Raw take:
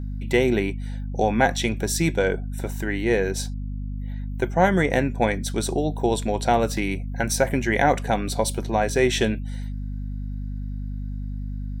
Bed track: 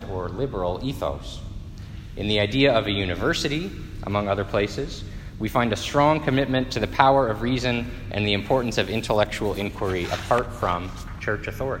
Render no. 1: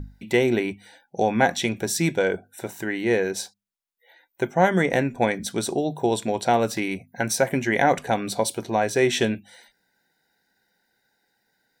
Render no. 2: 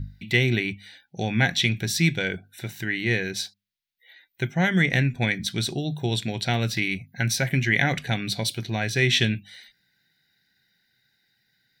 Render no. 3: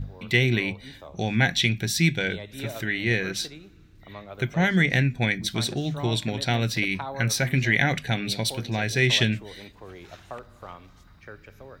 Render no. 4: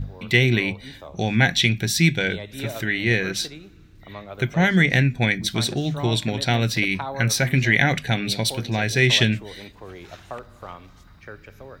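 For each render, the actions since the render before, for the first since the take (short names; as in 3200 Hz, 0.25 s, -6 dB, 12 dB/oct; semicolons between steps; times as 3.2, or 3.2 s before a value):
notches 50/100/150/200/250 Hz
graphic EQ 125/250/500/1000/2000/4000/8000 Hz +10/-3/-9/-12/+6/+8/-7 dB
add bed track -18 dB
gain +3.5 dB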